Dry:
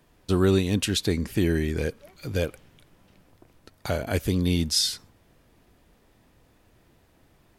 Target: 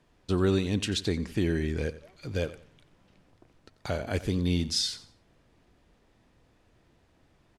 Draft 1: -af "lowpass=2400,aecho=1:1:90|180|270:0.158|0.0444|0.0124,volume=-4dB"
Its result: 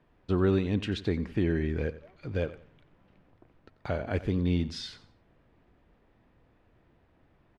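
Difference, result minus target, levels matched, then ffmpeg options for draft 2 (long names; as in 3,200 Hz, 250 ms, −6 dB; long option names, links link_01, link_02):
8,000 Hz band −15.5 dB
-af "lowpass=7400,aecho=1:1:90|180|270:0.158|0.0444|0.0124,volume=-4dB"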